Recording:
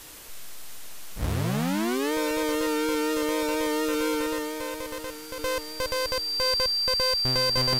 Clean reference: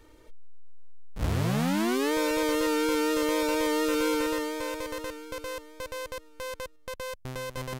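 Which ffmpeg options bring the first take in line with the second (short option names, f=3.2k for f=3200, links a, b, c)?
-af "adeclick=t=4,bandreject=f=4.7k:w=30,afwtdn=0.0063,asetnsamples=n=441:p=0,asendcmd='5.39 volume volume -8dB',volume=0dB"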